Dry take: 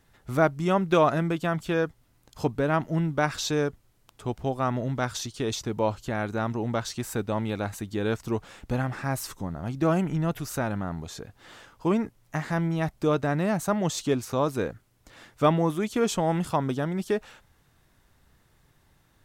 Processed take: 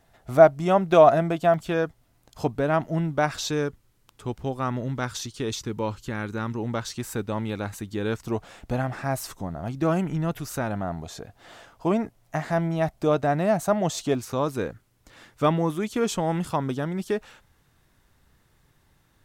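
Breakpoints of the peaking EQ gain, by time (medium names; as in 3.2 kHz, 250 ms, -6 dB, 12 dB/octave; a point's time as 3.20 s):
peaking EQ 680 Hz 0.39 oct
+13 dB
from 1.54 s +5.5 dB
from 3.48 s -5.5 dB
from 5.52 s -13.5 dB
from 6.58 s -4 dB
from 8.27 s +7 dB
from 9.68 s +0.5 dB
from 10.69 s +9.5 dB
from 14.15 s -1.5 dB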